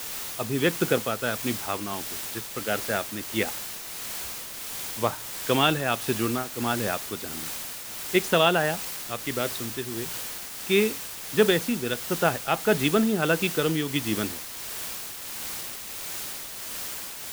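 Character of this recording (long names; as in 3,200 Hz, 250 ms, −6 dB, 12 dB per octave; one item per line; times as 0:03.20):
a quantiser's noise floor 6 bits, dither triangular
tremolo triangle 1.5 Hz, depth 45%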